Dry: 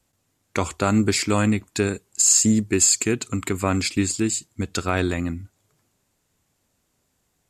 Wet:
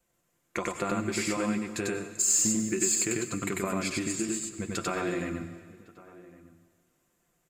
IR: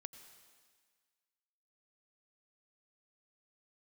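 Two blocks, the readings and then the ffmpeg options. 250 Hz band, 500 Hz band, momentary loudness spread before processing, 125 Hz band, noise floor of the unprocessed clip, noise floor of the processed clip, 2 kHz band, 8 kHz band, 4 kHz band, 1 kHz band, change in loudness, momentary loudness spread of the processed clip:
-8.5 dB, -6.5 dB, 12 LU, -12.5 dB, -71 dBFS, -74 dBFS, -6.0 dB, -7.0 dB, -10.0 dB, -7.0 dB, -7.5 dB, 11 LU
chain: -filter_complex "[0:a]bass=f=250:g=-5,treble=f=4k:g=-12,bandreject=f=850:w=12,aecho=1:1:5.8:0.48,acompressor=threshold=-25dB:ratio=4,flanger=delay=4.1:depth=4.6:regen=-46:speed=1.4:shape=triangular,aexciter=amount=1.2:drive=9.9:freq=6.1k,asplit=2[a][b];[b]adelay=1108,volume=-19dB,highshelf=f=4k:g=-24.9[c];[a][c]amix=inputs=2:normalize=0,asplit=2[d][e];[1:a]atrim=start_sample=2205,adelay=95[f];[e][f]afir=irnorm=-1:irlink=0,volume=4.5dB[g];[d][g]amix=inputs=2:normalize=0"

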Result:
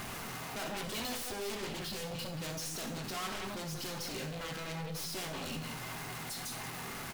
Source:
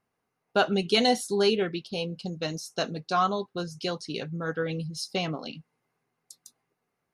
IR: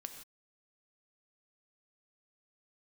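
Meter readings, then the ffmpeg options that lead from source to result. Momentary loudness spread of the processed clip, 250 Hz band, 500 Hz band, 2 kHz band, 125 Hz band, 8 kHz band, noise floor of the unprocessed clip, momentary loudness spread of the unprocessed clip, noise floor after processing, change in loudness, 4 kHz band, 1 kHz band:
3 LU, -11.0 dB, -14.5 dB, -7.0 dB, -6.5 dB, +0.5 dB, -81 dBFS, 11 LU, -43 dBFS, -10.5 dB, -8.5 dB, -11.5 dB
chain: -filter_complex "[0:a]aeval=exprs='val(0)+0.5*0.0168*sgn(val(0))':c=same,asplit=2[a][b];[b]adelay=180.8,volume=-10dB,highshelf=f=4k:g=-4.07[c];[a][c]amix=inputs=2:normalize=0,acompressor=mode=upward:threshold=-40dB:ratio=2.5,asoftclip=type=tanh:threshold=-24.5dB,equalizer=f=460:w=1.3:g=-8,aeval=exprs='0.0841*(cos(1*acos(clip(val(0)/0.0841,-1,1)))-cos(1*PI/2))+0.0299*(cos(3*acos(clip(val(0)/0.0841,-1,1)))-cos(3*PI/2))+0.015*(cos(6*acos(clip(val(0)/0.0841,-1,1)))-cos(6*PI/2))+0.0376*(cos(7*acos(clip(val(0)/0.0841,-1,1)))-cos(7*PI/2))+0.015*(cos(8*acos(clip(val(0)/0.0841,-1,1)))-cos(8*PI/2))':c=same[d];[1:a]atrim=start_sample=2205,asetrate=79380,aresample=44100[e];[d][e]afir=irnorm=-1:irlink=0"

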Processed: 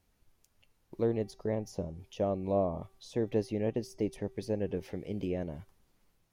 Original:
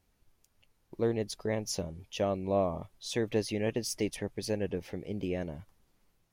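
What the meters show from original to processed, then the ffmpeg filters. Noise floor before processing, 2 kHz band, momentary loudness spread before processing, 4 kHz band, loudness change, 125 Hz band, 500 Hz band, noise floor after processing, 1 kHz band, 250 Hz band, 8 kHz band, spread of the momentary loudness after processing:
-74 dBFS, -8.5 dB, 9 LU, -11.5 dB, -1.0 dB, 0.0 dB, -0.5 dB, -74 dBFS, -2.0 dB, 0.0 dB, -13.5 dB, 10 LU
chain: -filter_complex "[0:a]acrossover=split=1000[a][b];[b]acompressor=threshold=-51dB:ratio=6[c];[a][c]amix=inputs=2:normalize=0,bandreject=f=386.7:t=h:w=4,bandreject=f=773.4:t=h:w=4,bandreject=f=1.1601k:t=h:w=4,bandreject=f=1.5468k:t=h:w=4,bandreject=f=1.9335k:t=h:w=4,bandreject=f=2.3202k:t=h:w=4,bandreject=f=2.7069k:t=h:w=4,bandreject=f=3.0936k:t=h:w=4,bandreject=f=3.4803k:t=h:w=4,bandreject=f=3.867k:t=h:w=4,bandreject=f=4.2537k:t=h:w=4,bandreject=f=4.6404k:t=h:w=4,bandreject=f=5.0271k:t=h:w=4,bandreject=f=5.4138k:t=h:w=4,bandreject=f=5.8005k:t=h:w=4,bandreject=f=6.1872k:t=h:w=4,bandreject=f=6.5739k:t=h:w=4,bandreject=f=6.9606k:t=h:w=4,bandreject=f=7.3473k:t=h:w=4,bandreject=f=7.734k:t=h:w=4,bandreject=f=8.1207k:t=h:w=4,bandreject=f=8.5074k:t=h:w=4,bandreject=f=8.8941k:t=h:w=4"

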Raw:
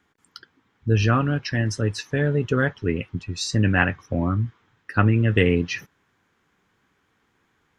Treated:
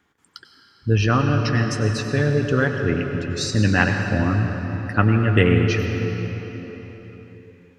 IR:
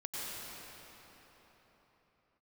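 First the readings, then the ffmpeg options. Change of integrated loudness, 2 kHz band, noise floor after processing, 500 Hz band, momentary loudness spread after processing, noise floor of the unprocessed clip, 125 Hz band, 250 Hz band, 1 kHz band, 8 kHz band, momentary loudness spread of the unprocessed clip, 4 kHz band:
+2.5 dB, +2.5 dB, -56 dBFS, +3.0 dB, 14 LU, -69 dBFS, +3.0 dB, +3.0 dB, +3.0 dB, +2.0 dB, 10 LU, +2.5 dB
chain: -filter_complex "[0:a]asplit=2[a][b];[1:a]atrim=start_sample=2205[c];[b][c]afir=irnorm=-1:irlink=0,volume=-3.5dB[d];[a][d]amix=inputs=2:normalize=0,volume=-1.5dB"

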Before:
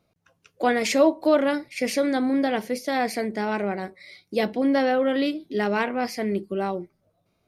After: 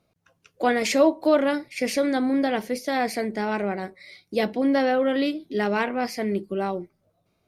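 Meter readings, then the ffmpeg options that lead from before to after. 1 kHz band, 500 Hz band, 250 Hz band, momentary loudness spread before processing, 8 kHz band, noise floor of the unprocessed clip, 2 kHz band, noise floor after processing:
0.0 dB, 0.0 dB, 0.0 dB, 8 LU, 0.0 dB, -72 dBFS, 0.0 dB, -72 dBFS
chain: -ar 48000 -c:a libopus -b:a 64k

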